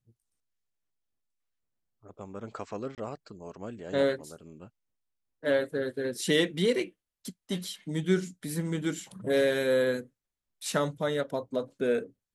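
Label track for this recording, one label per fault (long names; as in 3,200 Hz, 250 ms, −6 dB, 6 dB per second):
2.950000	2.980000	drop-out 28 ms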